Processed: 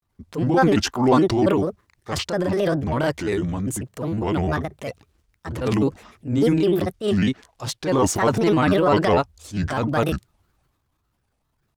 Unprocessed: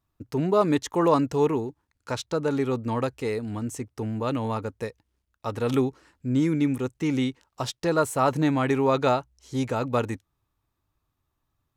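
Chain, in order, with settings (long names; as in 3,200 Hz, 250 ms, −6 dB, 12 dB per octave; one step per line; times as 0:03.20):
granular cloud, spray 26 ms, pitch spread up and down by 7 semitones
transient designer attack −8 dB, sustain +6 dB
level +6.5 dB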